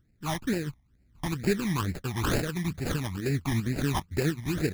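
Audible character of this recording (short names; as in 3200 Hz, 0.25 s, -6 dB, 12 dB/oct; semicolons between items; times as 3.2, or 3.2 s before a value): aliases and images of a low sample rate 2100 Hz, jitter 20%; tremolo saw up 2.5 Hz, depth 45%; phasing stages 12, 2.2 Hz, lowest notch 450–1100 Hz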